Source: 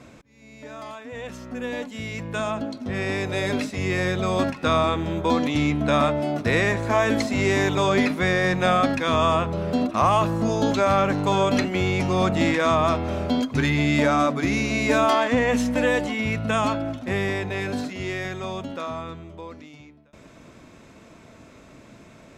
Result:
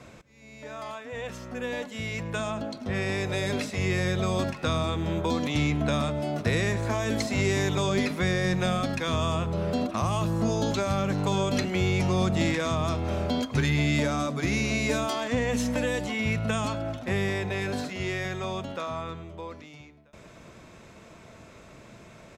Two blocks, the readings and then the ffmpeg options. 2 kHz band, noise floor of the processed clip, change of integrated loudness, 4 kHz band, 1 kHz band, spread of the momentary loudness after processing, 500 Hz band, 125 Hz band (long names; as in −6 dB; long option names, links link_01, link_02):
−5.5 dB, −50 dBFS, −5.0 dB, −3.0 dB, −9.0 dB, 9 LU, −6.0 dB, −0.5 dB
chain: -filter_complex "[0:a]equalizer=frequency=270:width_type=o:width=0.39:gain=-8,acrossover=split=350|3600[link_01][link_02][link_03];[link_02]acompressor=threshold=-30dB:ratio=6[link_04];[link_01][link_04][link_03]amix=inputs=3:normalize=0,aecho=1:1:106:0.0944"